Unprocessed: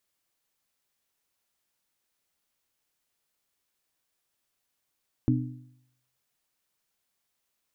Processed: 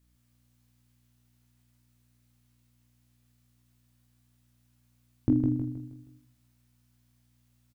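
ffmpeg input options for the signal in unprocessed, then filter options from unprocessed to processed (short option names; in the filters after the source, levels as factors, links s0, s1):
-f lavfi -i "aevalsrc='0.0891*pow(10,-3*t/0.76)*sin(2*PI*126*t)+0.0794*pow(10,-3*t/0.617)*sin(2*PI*252*t)+0.0708*pow(10,-3*t/0.584)*sin(2*PI*302.4*t)':d=1.55:s=44100"
-filter_complex "[0:a]asplit=2[s0][s1];[s1]aecho=0:1:20|46|79.8|123.7|180.9:0.631|0.398|0.251|0.158|0.1[s2];[s0][s2]amix=inputs=2:normalize=0,aeval=exprs='val(0)+0.000447*(sin(2*PI*60*n/s)+sin(2*PI*2*60*n/s)/2+sin(2*PI*3*60*n/s)/3+sin(2*PI*4*60*n/s)/4+sin(2*PI*5*60*n/s)/5)':c=same,asplit=2[s3][s4];[s4]aecho=0:1:158|316|474|632|790:0.596|0.244|0.1|0.0411|0.0168[s5];[s3][s5]amix=inputs=2:normalize=0"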